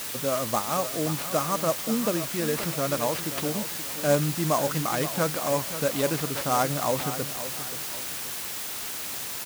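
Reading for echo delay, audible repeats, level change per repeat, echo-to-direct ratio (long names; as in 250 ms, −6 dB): 528 ms, 2, −8.5 dB, −11.5 dB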